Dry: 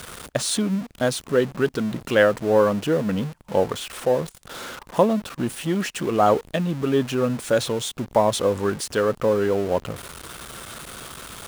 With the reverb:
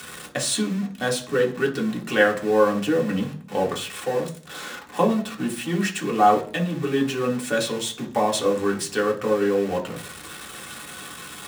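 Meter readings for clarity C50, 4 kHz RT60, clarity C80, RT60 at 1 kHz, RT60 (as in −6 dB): 13.0 dB, 0.50 s, 17.5 dB, 0.40 s, 0.45 s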